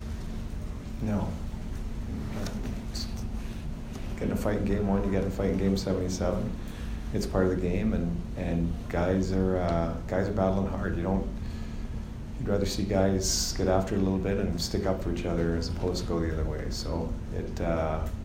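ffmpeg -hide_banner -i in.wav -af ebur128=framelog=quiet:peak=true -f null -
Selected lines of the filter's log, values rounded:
Integrated loudness:
  I:         -30.1 LUFS
  Threshold: -40.1 LUFS
Loudness range:
  LRA:         7.1 LU
  Threshold: -49.7 LUFS
  LRA low:   -35.0 LUFS
  LRA high:  -28.0 LUFS
True peak:
  Peak:      -11.3 dBFS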